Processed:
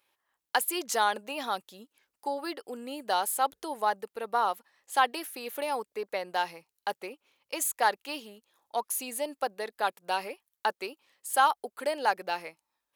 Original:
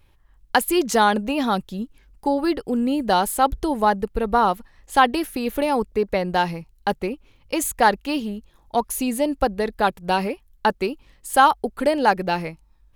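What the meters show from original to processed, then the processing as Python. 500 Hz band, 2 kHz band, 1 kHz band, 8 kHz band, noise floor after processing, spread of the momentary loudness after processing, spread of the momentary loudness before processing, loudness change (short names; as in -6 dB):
-11.5 dB, -7.5 dB, -8.5 dB, -4.0 dB, under -85 dBFS, 13 LU, 10 LU, -9.5 dB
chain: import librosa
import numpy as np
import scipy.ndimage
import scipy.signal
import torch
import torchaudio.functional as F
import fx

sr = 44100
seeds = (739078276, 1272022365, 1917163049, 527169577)

y = scipy.signal.sosfilt(scipy.signal.butter(2, 530.0, 'highpass', fs=sr, output='sos'), x)
y = fx.high_shelf(y, sr, hz=5900.0, db=5.5)
y = F.gain(torch.from_numpy(y), -8.0).numpy()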